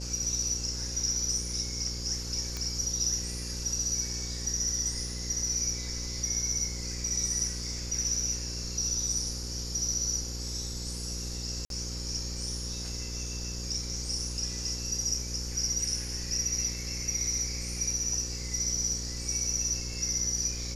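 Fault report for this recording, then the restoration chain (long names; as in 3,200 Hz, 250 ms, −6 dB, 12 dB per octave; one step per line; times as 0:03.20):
mains buzz 60 Hz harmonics 9 −38 dBFS
0:02.57: click −19 dBFS
0:11.65–0:11.70: drop-out 52 ms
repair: click removal
hum removal 60 Hz, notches 9
repair the gap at 0:11.65, 52 ms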